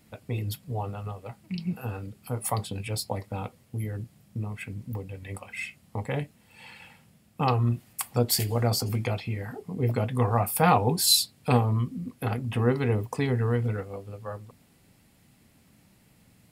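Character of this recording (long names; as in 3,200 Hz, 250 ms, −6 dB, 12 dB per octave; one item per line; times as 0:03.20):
background noise floor −61 dBFS
spectral slope −4.5 dB per octave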